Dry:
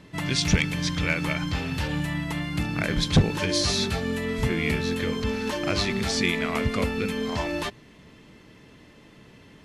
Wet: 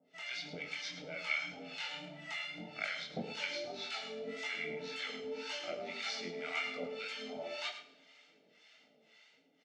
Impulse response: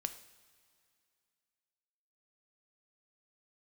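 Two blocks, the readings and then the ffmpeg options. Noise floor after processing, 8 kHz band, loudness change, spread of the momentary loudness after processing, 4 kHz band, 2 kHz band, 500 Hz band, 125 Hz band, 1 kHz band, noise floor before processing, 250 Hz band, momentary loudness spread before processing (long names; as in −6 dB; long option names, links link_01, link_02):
−69 dBFS, −19.5 dB, −14.0 dB, 5 LU, −12.0 dB, −10.0 dB, −13.5 dB, −30.0 dB, −13.5 dB, −52 dBFS, −23.0 dB, 6 LU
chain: -filter_complex "[0:a]acrossover=split=3300[link_01][link_02];[link_02]acompressor=threshold=-40dB:ratio=4:attack=1:release=60[link_03];[link_01][link_03]amix=inputs=2:normalize=0,equalizer=frequency=990:width=6:gain=-12,aecho=1:1:1.4:0.84,dynaudnorm=framelen=120:gausssize=9:maxgain=4dB,flanger=delay=1.5:depth=1:regen=-70:speed=0.68:shape=triangular,acrossover=split=760[link_04][link_05];[link_04]aeval=exprs='val(0)*(1-1/2+1/2*cos(2*PI*1.9*n/s))':channel_layout=same[link_06];[link_05]aeval=exprs='val(0)*(1-1/2-1/2*cos(2*PI*1.9*n/s))':channel_layout=same[link_07];[link_06][link_07]amix=inputs=2:normalize=0,flanger=delay=18.5:depth=7.2:speed=1.8,highpass=frequency=320:width=0.5412,highpass=frequency=320:width=1.3066,equalizer=frequency=540:width_type=q:width=4:gain=-9,equalizer=frequency=840:width_type=q:width=4:gain=-4,equalizer=frequency=1500:width_type=q:width=4:gain=-8,lowpass=frequency=6300:width=0.5412,lowpass=frequency=6300:width=1.3066,aecho=1:1:107:0.282[link_08];[1:a]atrim=start_sample=2205,asetrate=52920,aresample=44100[link_09];[link_08][link_09]afir=irnorm=-1:irlink=0,volume=1.5dB"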